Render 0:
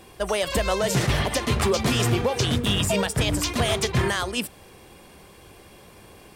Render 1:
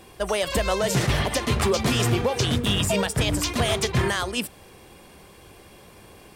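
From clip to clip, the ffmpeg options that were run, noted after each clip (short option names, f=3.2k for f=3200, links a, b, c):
-af anull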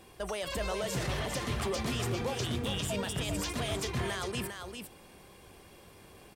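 -af "alimiter=limit=-20dB:level=0:latency=1:release=16,aecho=1:1:401:0.501,volume=-7dB"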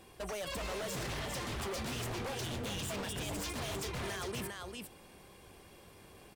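-af "aeval=exprs='0.0266*(abs(mod(val(0)/0.0266+3,4)-2)-1)':c=same,volume=-2dB"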